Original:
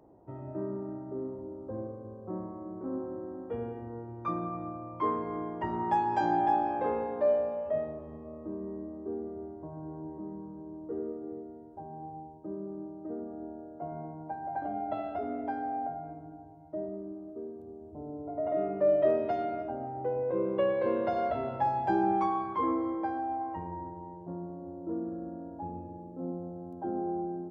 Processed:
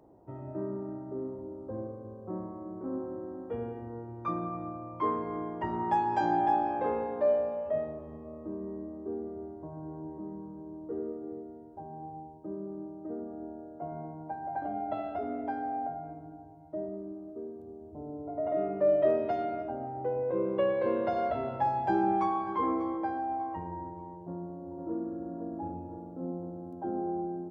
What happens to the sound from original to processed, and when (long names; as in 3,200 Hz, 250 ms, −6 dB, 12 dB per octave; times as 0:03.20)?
0:21.35–0:22.38: delay throw 590 ms, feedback 30%, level −16 dB
0:24.20–0:25.22: delay throw 510 ms, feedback 50%, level −5 dB